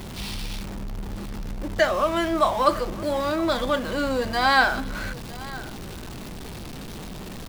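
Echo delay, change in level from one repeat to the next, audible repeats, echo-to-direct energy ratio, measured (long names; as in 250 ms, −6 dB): 960 ms, repeats not evenly spaced, 1, −19.0 dB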